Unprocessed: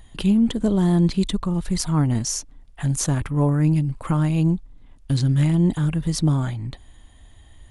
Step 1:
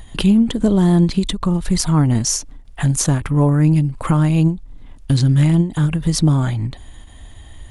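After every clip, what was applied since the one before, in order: in parallel at +3 dB: compression, threshold -27 dBFS, peak gain reduction 13 dB; on the sum: endings held to a fixed fall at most 180 dB/s; trim +2 dB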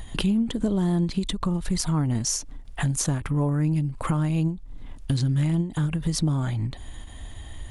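compression 2:1, threshold -28 dBFS, peak gain reduction 10 dB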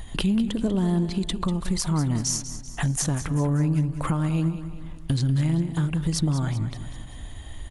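feedback delay 193 ms, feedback 49%, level -12 dB

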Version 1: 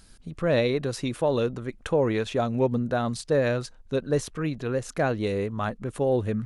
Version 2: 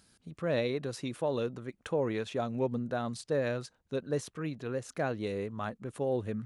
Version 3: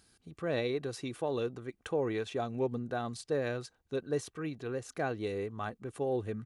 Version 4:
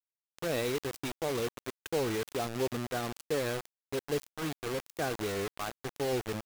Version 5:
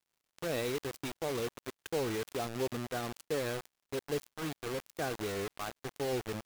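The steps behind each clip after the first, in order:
high-pass 96 Hz; trim -7.5 dB
comb 2.6 ms, depth 34%; trim -1.5 dB
bit crusher 6-bit
crackle 170 per s -62 dBFS; trim -2.5 dB

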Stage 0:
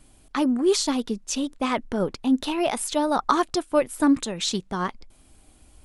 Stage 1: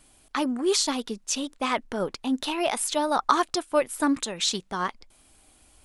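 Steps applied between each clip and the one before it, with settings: bass shelf 410 Hz -10 dB; trim +1.5 dB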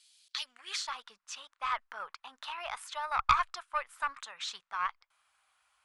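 band-pass sweep 4.2 kHz -> 1.2 kHz, 0.38–0.89 s; valve stage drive 14 dB, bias 0.5; amplifier tone stack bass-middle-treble 10-0-10; trim +8.5 dB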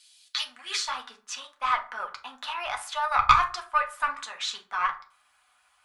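reverberation RT60 0.40 s, pre-delay 4 ms, DRR 2 dB; trim +5.5 dB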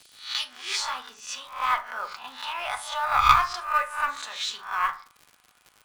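reverse spectral sustain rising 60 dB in 0.43 s; crackle 100 per s -37 dBFS; in parallel at -5.5 dB: short-mantissa float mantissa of 2-bit; on the sum: trim -4.5 dB

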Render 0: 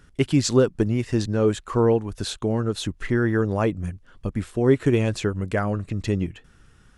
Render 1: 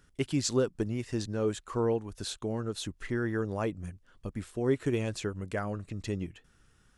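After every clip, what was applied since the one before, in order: tone controls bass -2 dB, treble +4 dB; trim -9 dB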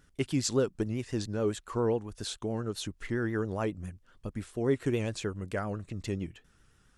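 vibrato 7.3 Hz 72 cents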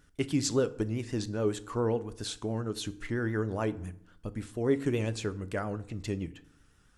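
FDN reverb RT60 0.68 s, low-frequency decay 1.25×, high-frequency decay 0.65×, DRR 12.5 dB

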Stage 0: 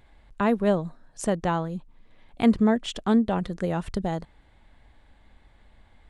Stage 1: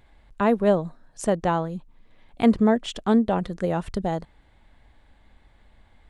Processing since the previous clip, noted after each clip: dynamic bell 590 Hz, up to +4 dB, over -31 dBFS, Q 0.74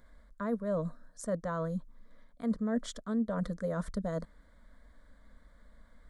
reverse; compression 16:1, threshold -27 dBFS, peak gain reduction 15.5 dB; reverse; static phaser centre 540 Hz, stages 8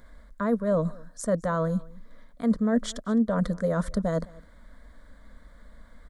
delay 210 ms -23.5 dB; trim +8 dB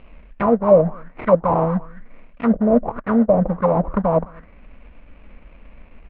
sample-rate reducer 1.7 kHz, jitter 20%; distance through air 290 m; touch-sensitive low-pass 610–2800 Hz down, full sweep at -21 dBFS; trim +6 dB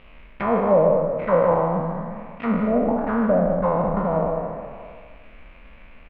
spectral sustain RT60 1.64 s; on a send: delay 151 ms -8.5 dB; on the sum: tape noise reduction on one side only encoder only; trim -7.5 dB

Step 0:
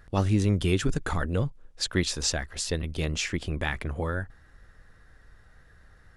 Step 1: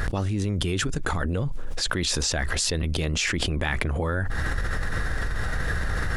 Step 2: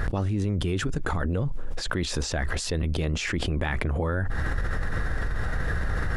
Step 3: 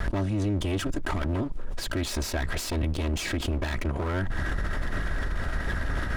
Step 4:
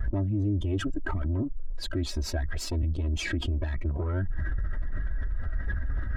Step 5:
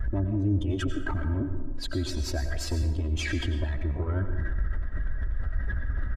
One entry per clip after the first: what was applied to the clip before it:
level flattener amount 100%; trim -5.5 dB
treble shelf 2.3 kHz -8.5 dB
comb filter that takes the minimum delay 3.1 ms; hard clipper -20 dBFS, distortion -25 dB
spectral contrast enhancement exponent 1.7
plate-style reverb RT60 1.2 s, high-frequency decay 0.55×, pre-delay 80 ms, DRR 6.5 dB; resampled via 32 kHz

